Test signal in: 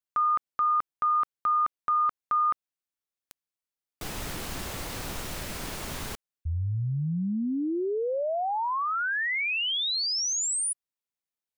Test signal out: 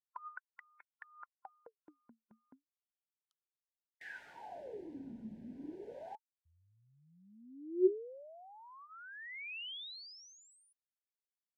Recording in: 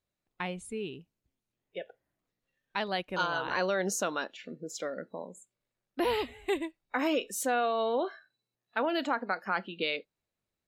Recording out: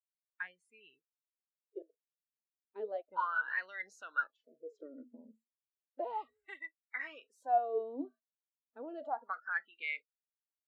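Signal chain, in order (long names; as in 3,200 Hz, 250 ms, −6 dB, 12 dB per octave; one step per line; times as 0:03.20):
noise reduction from a noise print of the clip's start 28 dB
LFO wah 0.33 Hz 220–2,100 Hz, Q 17
level +7.5 dB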